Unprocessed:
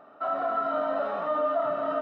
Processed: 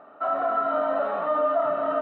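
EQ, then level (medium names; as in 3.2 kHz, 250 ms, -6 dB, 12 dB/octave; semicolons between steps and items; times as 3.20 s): distance through air 260 m; bass shelf 240 Hz -6.5 dB; +5.0 dB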